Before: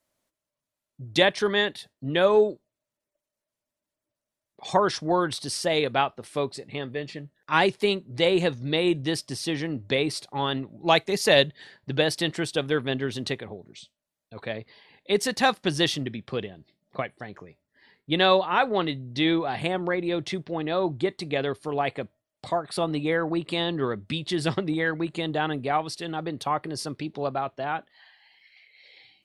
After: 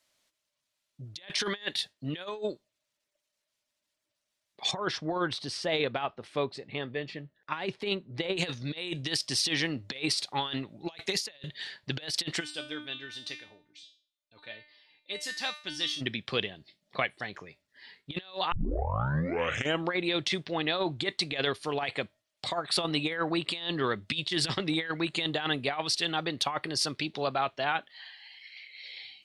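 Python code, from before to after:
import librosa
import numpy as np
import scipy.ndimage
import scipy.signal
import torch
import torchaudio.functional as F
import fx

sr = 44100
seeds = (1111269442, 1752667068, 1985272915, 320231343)

y = fx.lowpass(x, sr, hz=1000.0, slope=6, at=(4.71, 8.37))
y = fx.comb_fb(y, sr, f0_hz=300.0, decay_s=0.42, harmonics='all', damping=0.0, mix_pct=90, at=(12.39, 16.0), fade=0.02)
y = fx.edit(y, sr, fx.tape_start(start_s=18.52, length_s=1.39), tone=tone)
y = fx.peak_eq(y, sr, hz=3800.0, db=14.5, octaves=3.0)
y = fx.over_compress(y, sr, threshold_db=-22.0, ratio=-0.5)
y = F.gain(torch.from_numpy(y), -8.0).numpy()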